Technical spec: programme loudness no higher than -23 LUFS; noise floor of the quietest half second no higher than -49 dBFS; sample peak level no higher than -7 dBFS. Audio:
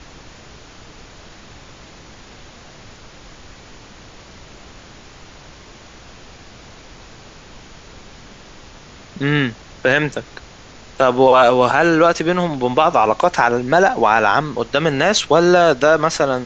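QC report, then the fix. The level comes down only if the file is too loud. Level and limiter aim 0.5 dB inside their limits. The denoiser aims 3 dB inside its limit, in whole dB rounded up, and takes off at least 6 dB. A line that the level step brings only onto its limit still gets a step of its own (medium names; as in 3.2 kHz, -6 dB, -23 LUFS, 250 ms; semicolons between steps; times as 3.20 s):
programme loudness -15.0 LUFS: fail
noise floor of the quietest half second -41 dBFS: fail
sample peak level -1.5 dBFS: fail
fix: trim -8.5 dB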